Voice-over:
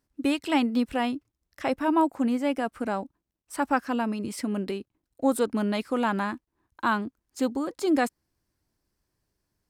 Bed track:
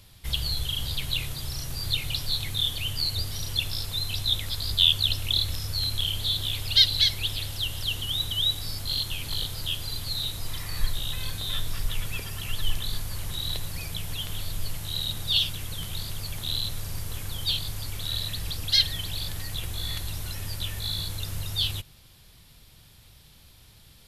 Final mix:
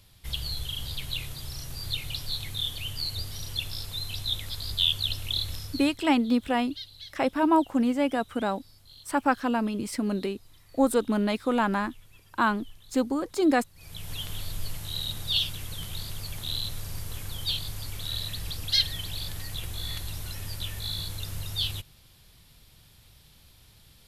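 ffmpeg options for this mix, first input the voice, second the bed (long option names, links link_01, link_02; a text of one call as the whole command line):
ffmpeg -i stem1.wav -i stem2.wav -filter_complex "[0:a]adelay=5550,volume=1dB[link_01];[1:a]volume=16dB,afade=type=out:start_time=5.56:duration=0.42:silence=0.11885,afade=type=in:start_time=13.75:duration=0.41:silence=0.0944061[link_02];[link_01][link_02]amix=inputs=2:normalize=0" out.wav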